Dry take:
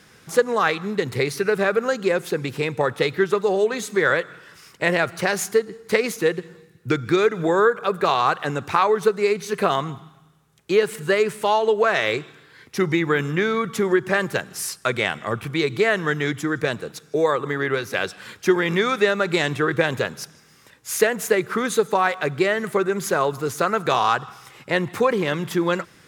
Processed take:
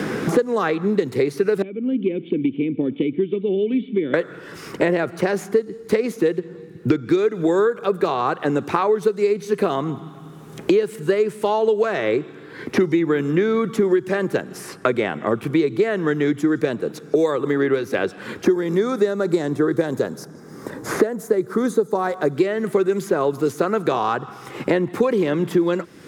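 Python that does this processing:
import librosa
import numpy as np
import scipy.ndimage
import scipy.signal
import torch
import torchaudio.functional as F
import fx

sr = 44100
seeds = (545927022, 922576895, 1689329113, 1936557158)

y = fx.formant_cascade(x, sr, vowel='i', at=(1.62, 4.14))
y = fx.high_shelf(y, sr, hz=4500.0, db=-11.0, at=(6.39, 7.1))
y = fx.peak_eq(y, sr, hz=2700.0, db=-14.0, octaves=0.91, at=(18.45, 22.37))
y = fx.peak_eq(y, sr, hz=310.0, db=13.0, octaves=1.9)
y = fx.band_squash(y, sr, depth_pct=100)
y = y * librosa.db_to_amplitude(-7.5)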